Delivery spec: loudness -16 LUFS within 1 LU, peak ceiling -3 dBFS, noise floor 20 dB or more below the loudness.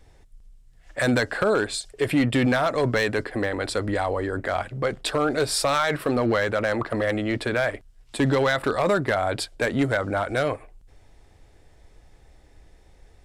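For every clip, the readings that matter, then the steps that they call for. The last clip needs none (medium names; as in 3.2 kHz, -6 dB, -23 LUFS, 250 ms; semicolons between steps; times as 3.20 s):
clipped samples 0.6%; clipping level -14.5 dBFS; loudness -24.0 LUFS; peak level -14.5 dBFS; loudness target -16.0 LUFS
-> clip repair -14.5 dBFS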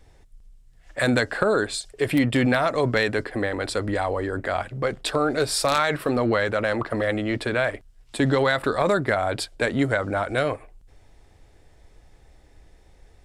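clipped samples 0.0%; loudness -23.5 LUFS; peak level -5.5 dBFS; loudness target -16.0 LUFS
-> trim +7.5 dB; peak limiter -3 dBFS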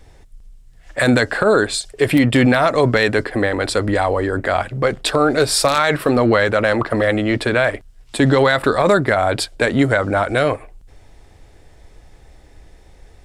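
loudness -16.5 LUFS; peak level -3.0 dBFS; noise floor -47 dBFS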